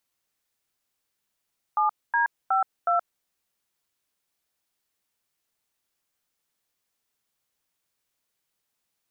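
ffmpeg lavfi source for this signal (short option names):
-f lavfi -i "aevalsrc='0.0794*clip(min(mod(t,0.367),0.124-mod(t,0.367))/0.002,0,1)*(eq(floor(t/0.367),0)*(sin(2*PI*852*mod(t,0.367))+sin(2*PI*1209*mod(t,0.367)))+eq(floor(t/0.367),1)*(sin(2*PI*941*mod(t,0.367))+sin(2*PI*1633*mod(t,0.367)))+eq(floor(t/0.367),2)*(sin(2*PI*770*mod(t,0.367))+sin(2*PI*1336*mod(t,0.367)))+eq(floor(t/0.367),3)*(sin(2*PI*697*mod(t,0.367))+sin(2*PI*1336*mod(t,0.367))))':d=1.468:s=44100"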